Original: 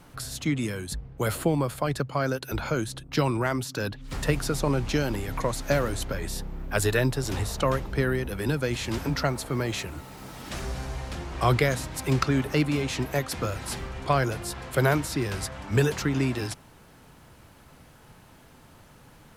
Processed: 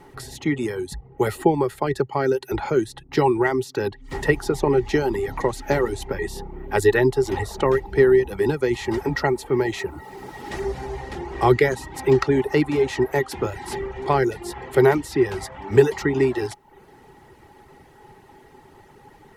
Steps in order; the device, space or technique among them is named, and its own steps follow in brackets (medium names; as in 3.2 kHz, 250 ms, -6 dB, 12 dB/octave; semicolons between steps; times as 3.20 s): inside a helmet (treble shelf 5.4 kHz -4.5 dB; small resonant body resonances 390/830/1900 Hz, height 17 dB, ringing for 55 ms); reverb removal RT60 0.53 s